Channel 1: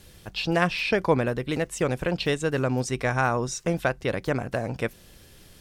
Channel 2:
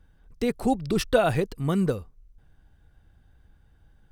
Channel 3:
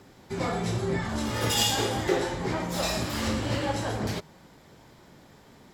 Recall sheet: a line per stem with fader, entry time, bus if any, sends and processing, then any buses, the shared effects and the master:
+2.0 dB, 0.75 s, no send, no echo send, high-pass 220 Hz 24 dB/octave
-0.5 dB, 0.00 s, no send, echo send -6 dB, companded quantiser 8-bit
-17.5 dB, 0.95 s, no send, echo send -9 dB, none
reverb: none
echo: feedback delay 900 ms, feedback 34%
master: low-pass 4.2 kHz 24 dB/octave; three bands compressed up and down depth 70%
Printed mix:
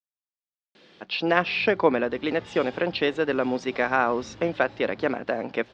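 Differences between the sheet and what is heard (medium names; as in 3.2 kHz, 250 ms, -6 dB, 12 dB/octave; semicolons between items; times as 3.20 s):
stem 2: muted; master: missing three bands compressed up and down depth 70%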